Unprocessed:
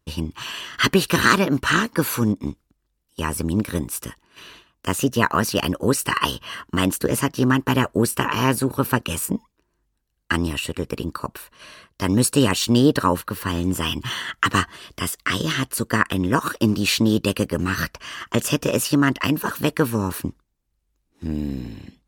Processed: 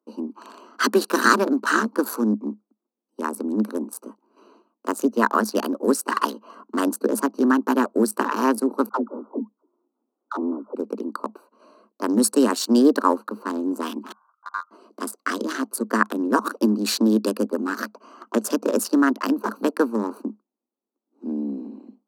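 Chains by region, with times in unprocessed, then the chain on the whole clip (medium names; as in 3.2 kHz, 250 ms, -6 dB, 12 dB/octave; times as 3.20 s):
8.89–10.75 s: brick-wall FIR band-pass 220–1500 Hz + phase dispersion lows, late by 70 ms, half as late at 530 Hz + three bands compressed up and down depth 40%
14.12–14.71 s: Gaussian low-pass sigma 25 samples + ring modulator 1.3 kHz
whole clip: local Wiener filter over 25 samples; Chebyshev high-pass 210 Hz, order 8; high-order bell 2.6 kHz -11 dB 1.1 oct; trim +1.5 dB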